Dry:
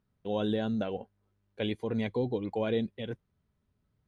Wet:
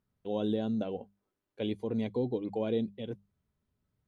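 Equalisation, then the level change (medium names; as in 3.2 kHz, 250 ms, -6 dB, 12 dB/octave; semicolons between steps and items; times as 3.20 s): hum notches 50/100/150/200 Hz; dynamic bell 290 Hz, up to +4 dB, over -42 dBFS, Q 0.77; dynamic bell 1.7 kHz, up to -8 dB, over -57 dBFS, Q 1.5; -3.5 dB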